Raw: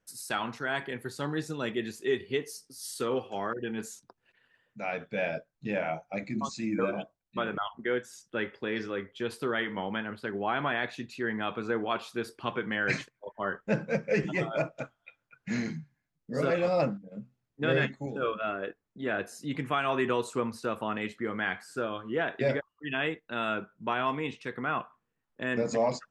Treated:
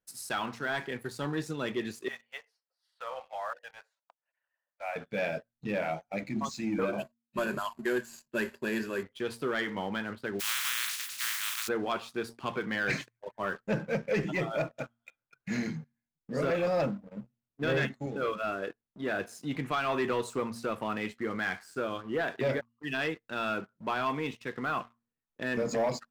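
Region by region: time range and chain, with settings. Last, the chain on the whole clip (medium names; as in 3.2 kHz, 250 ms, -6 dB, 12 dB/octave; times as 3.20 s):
2.08–4.96 s: steep high-pass 550 Hz 72 dB/octave + distance through air 420 m + tape noise reduction on one side only decoder only
6.98–9.03 s: CVSD coder 64 kbps + rippled EQ curve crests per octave 1.4, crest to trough 11 dB + tape noise reduction on one side only decoder only
10.39–11.67 s: spectral contrast reduction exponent 0.16 + inverse Chebyshev high-pass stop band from 600 Hz + decay stretcher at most 42 dB/s
whole clip: de-hum 116.8 Hz, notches 2; waveshaping leveller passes 2; trim -7.5 dB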